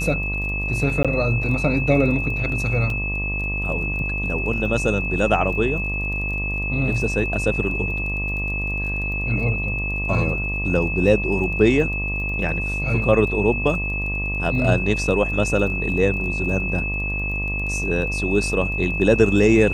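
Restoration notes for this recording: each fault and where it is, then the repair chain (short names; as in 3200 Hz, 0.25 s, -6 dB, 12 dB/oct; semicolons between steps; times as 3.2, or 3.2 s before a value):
buzz 50 Hz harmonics 24 -27 dBFS
crackle 23/s -31 dBFS
tone 2600 Hz -25 dBFS
1.03–1.05 gap 16 ms
2.9 gap 2.8 ms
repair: de-click; de-hum 50 Hz, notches 24; notch 2600 Hz, Q 30; interpolate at 1.03, 16 ms; interpolate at 2.9, 2.8 ms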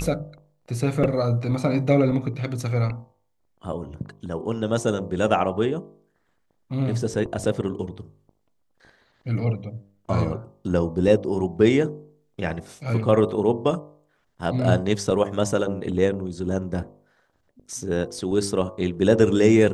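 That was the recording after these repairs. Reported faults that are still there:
none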